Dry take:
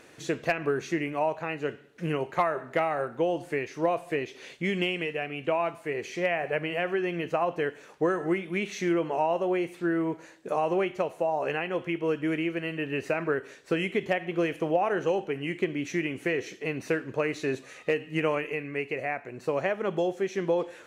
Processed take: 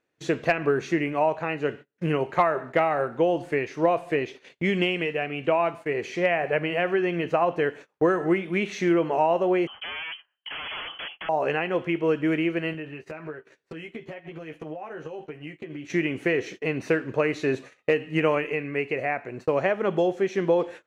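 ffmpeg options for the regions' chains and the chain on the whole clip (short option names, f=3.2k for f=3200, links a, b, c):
-filter_complex "[0:a]asettb=1/sr,asplit=3[a][b][c];[a]atrim=end=9.674[d];[b]atrim=start=9.67:end=11.29,asetpts=PTS-STARTPTS,afade=t=in:d=0.004:c=qsin,afade=t=out:st=1.616:d=0.004:c=qsin,aeval=exprs='0.0237*(abs(mod(val(0)/0.0237+3,4)-2)-1)':c=same,lowpass=f=2.9k:t=q:w=0.5098,lowpass=f=2.9k:t=q:w=0.6013,lowpass=f=2.9k:t=q:w=0.9,lowpass=f=2.9k:t=q:w=2.563,afreqshift=-3400[e];[c]atrim=start=11.286[f];[d][e]acrossfade=d=0.004:c1=hsin:c2=qsin[g];[g][f]acrossfade=d=0.004:c1=qsin:c2=hsin,asettb=1/sr,asplit=3[h][i][j];[h]atrim=end=12.734[k];[i]atrim=start=12.73:end=15.9,asetpts=PTS-STARTPTS,afade=t=in:d=0.004:c=qsin,afade=t=out:st=3.166:d=0.004:c=qsin,acompressor=threshold=-39dB:ratio=10:attack=3.2:release=140:knee=1:detection=peak,asplit=2[l][m];[m]adelay=13,volume=-4dB[n];[l][n]amix=inputs=2:normalize=0,atrim=end_sample=139797[o];[j]atrim=start=15.896[p];[k][o]acrossfade=d=0.004:c1=hsin:c2=qsin[q];[q][p]acrossfade=d=0.004:c1=qsin:c2=hsin,agate=range=-29dB:threshold=-43dB:ratio=16:detection=peak,highshelf=f=7k:g=-12,volume=4.5dB"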